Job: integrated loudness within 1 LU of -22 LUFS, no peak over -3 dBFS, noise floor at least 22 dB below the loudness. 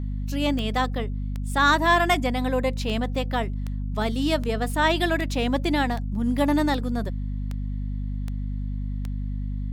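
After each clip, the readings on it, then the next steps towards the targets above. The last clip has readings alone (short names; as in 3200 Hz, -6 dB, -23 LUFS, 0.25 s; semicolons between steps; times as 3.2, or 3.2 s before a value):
clicks 12; hum 50 Hz; harmonics up to 250 Hz; hum level -26 dBFS; loudness -25.0 LUFS; peak -8.0 dBFS; loudness target -22.0 LUFS
-> de-click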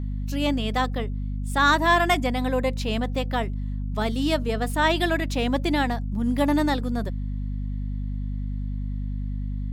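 clicks 0; hum 50 Hz; harmonics up to 250 Hz; hum level -26 dBFS
-> de-hum 50 Hz, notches 5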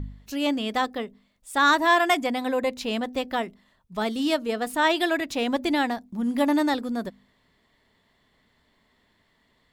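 hum none; loudness -25.0 LUFS; peak -9.5 dBFS; loudness target -22.0 LUFS
-> gain +3 dB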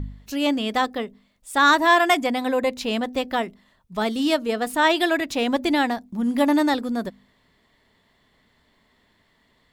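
loudness -22.0 LUFS; peak -6.5 dBFS; noise floor -64 dBFS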